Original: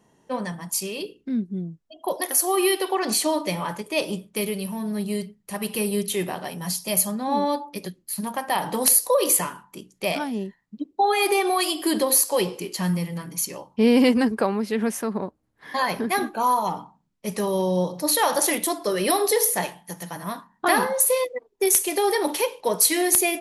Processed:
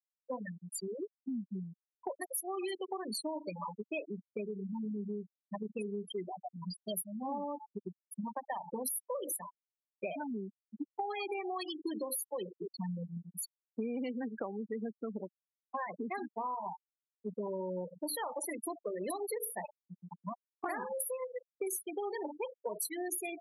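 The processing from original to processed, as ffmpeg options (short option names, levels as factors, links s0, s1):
-filter_complex "[0:a]asettb=1/sr,asplit=3[s0][s1][s2];[s0]atrim=end=19.524[s3];[s1]atrim=start=19.52:end=22.8,asetpts=PTS-STARTPTS,afade=t=in:d=0.004:c=qsin,afade=t=out:st=3.276:d=0.004:c=qsin,asplit=2[s4][s5];[s5]adelay=47,volume=0.282[s6];[s4][s6]amix=inputs=2:normalize=0,atrim=end_sample=144648[s7];[s2]atrim=start=22.796[s8];[s3][s7]acrossfade=d=0.004:c1=hsin:c2=qsin[s9];[s9][s8]acrossfade=d=0.004:c1=qsin:c2=hsin,afftfilt=real='re*gte(hypot(re,im),0.158)':imag='im*gte(hypot(re,im),0.158)':win_size=1024:overlap=0.75,highpass=f=190:w=0.5412,highpass=f=190:w=1.3066,acompressor=threshold=0.0224:ratio=6,volume=0.708"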